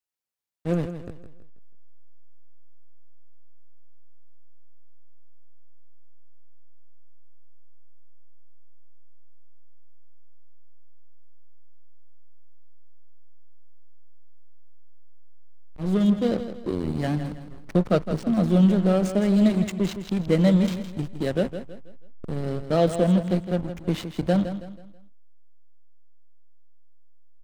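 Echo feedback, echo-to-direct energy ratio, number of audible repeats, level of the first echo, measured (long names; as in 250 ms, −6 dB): 37%, −10.0 dB, 3, −10.5 dB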